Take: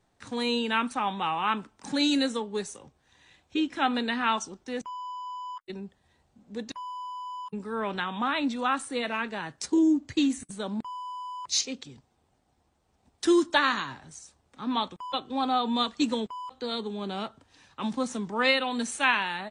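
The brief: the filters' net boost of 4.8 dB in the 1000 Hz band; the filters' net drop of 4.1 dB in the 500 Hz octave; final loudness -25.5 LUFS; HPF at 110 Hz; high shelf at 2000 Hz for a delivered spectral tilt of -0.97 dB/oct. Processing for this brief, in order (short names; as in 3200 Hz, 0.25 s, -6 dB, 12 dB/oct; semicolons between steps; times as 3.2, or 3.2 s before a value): HPF 110 Hz; bell 500 Hz -7.5 dB; bell 1000 Hz +5.5 dB; high shelf 2000 Hz +9 dB; gain -0.5 dB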